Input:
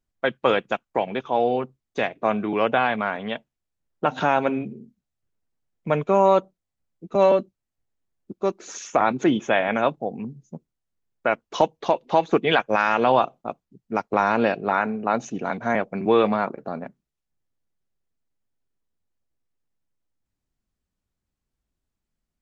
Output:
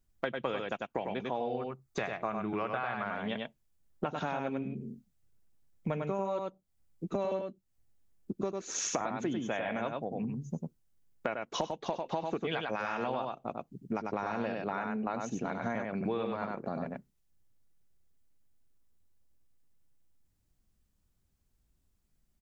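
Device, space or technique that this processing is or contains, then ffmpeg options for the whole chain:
ASMR close-microphone chain: -filter_complex "[0:a]asettb=1/sr,asplit=3[s0][s1][s2];[s0]atrim=end=1.614[s3];[s1]atrim=start=1.61:end=3.05,asetpts=PTS-STARTPTS,afade=t=in:d=0.004:c=qsin,afade=t=out:st=1.436:d=0.004:c=qsin,equalizer=f=250:t=o:w=0.33:g=-9,equalizer=f=500:t=o:w=0.33:g=-5,equalizer=f=1250:t=o:w=0.33:g=6,equalizer=f=3150:t=o:w=0.33:g=-7[s4];[s2]atrim=start=3.046[s5];[s3][s4]acrossfade=d=0.004:c1=hsin:c2=qsin[s6];[s6][s5]acrossfade=d=0.004:c1=qsin:c2=hsin,lowshelf=f=200:g=8,aecho=1:1:97:0.596,acompressor=threshold=0.0251:ratio=6,highshelf=f=6200:g=8"

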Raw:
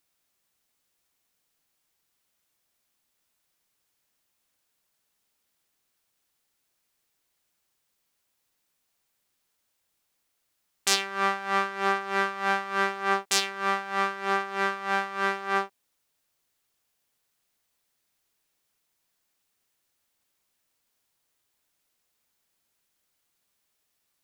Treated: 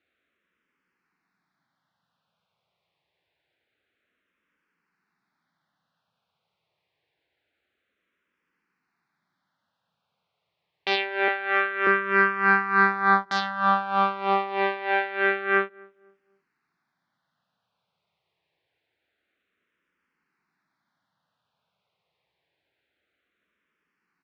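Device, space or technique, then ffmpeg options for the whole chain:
barber-pole phaser into a guitar amplifier: -filter_complex "[0:a]asplit=2[s0][s1];[s1]afreqshift=-0.26[s2];[s0][s2]amix=inputs=2:normalize=1,asoftclip=type=tanh:threshold=0.168,highpass=89,equalizer=f=170:t=q:w=4:g=6,equalizer=f=1500:t=q:w=4:g=3,equalizer=f=3000:t=q:w=4:g=-4,lowpass=f=3400:w=0.5412,lowpass=f=3400:w=1.3066,asettb=1/sr,asplit=3[s3][s4][s5];[s3]atrim=end=11.284[s6];[s4]atrim=start=11.28:end=11.87,asetpts=PTS-STARTPTS,afade=t=in:d=0.004:c=qsin,afade=t=out:st=0.586:d=0.004:c=qsin,highpass=430[s7];[s5]atrim=start=11.866[s8];[s6][s7]acrossfade=d=0.004:c1=hsin:c2=qsin[s9];[s9][s8]acrossfade=d=0.004:c1=qsin:c2=hsin,asplit=2[s10][s11];[s11]adelay=252,lowpass=f=880:p=1,volume=0.0668,asplit=2[s12][s13];[s13]adelay=252,lowpass=f=880:p=1,volume=0.39,asplit=2[s14][s15];[s15]adelay=252,lowpass=f=880:p=1,volume=0.39[s16];[s10][s12][s14][s16]amix=inputs=4:normalize=0,volume=2.51"

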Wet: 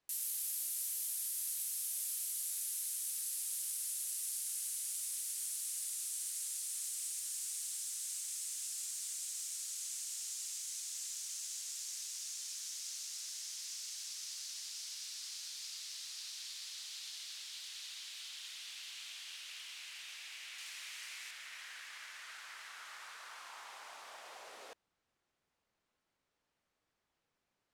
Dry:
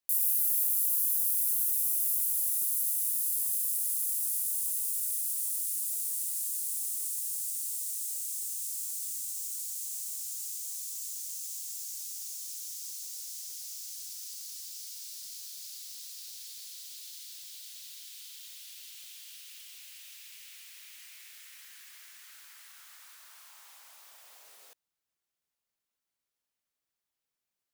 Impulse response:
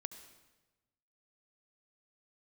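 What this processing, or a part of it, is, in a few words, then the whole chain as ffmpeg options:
through cloth: -filter_complex "[0:a]lowpass=8100,highshelf=f=2800:g=-13,asettb=1/sr,asplit=3[s0][s1][s2];[s0]atrim=end=20.584[s3];[s1]atrim=start=20.58:end=21.31,asetpts=PTS-STARTPTS,afade=t=in:d=0.004:c=qsin,afade=t=out:st=0.726:d=0.004:c=qsin,bass=f=250:g=3,treble=f=4000:g=5[s4];[s2]atrim=start=21.306[s5];[s3][s4]acrossfade=d=0.004:c1=hsin:c2=qsin[s6];[s6][s5]acrossfade=d=0.004:c1=qsin:c2=hsin,volume=3.98"

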